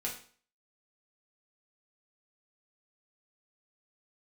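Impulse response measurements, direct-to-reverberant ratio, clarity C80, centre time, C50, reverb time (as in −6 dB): −4.0 dB, 12.0 dB, 25 ms, 7.5 dB, 0.45 s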